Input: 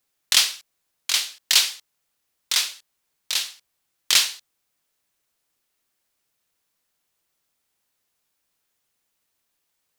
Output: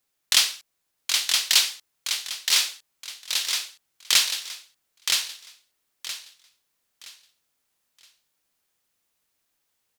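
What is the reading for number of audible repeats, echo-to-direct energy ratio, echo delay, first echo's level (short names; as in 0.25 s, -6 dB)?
3, -3.5 dB, 0.97 s, -4.0 dB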